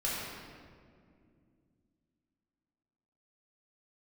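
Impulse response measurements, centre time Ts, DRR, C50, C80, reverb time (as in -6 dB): 125 ms, -7.5 dB, -2.5 dB, -0.5 dB, 2.3 s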